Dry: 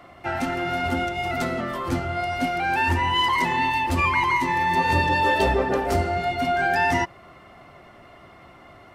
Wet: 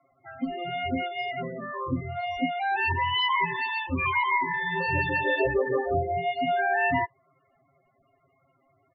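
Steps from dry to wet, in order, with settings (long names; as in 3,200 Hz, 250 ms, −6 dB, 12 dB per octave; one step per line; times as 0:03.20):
noise reduction from a noise print of the clip's start 14 dB
comb filter 7.4 ms, depth 66%
spectral peaks only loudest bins 16
level −4.5 dB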